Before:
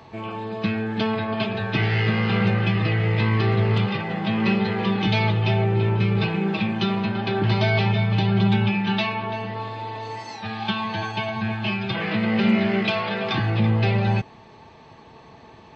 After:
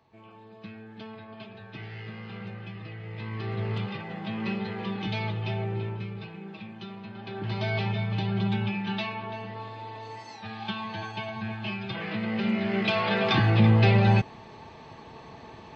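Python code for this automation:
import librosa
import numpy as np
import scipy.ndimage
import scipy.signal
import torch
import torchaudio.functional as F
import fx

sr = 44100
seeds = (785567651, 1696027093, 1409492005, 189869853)

y = fx.gain(x, sr, db=fx.line((3.02, -19.0), (3.65, -10.0), (5.76, -10.0), (6.23, -18.0), (7.01, -18.0), (7.72, -8.0), (12.58, -8.0), (13.13, 1.0)))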